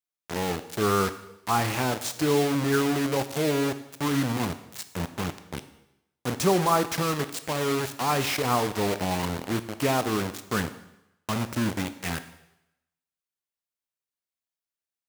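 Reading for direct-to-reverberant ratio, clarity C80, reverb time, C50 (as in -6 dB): 11.0 dB, 15.5 dB, 0.85 s, 13.0 dB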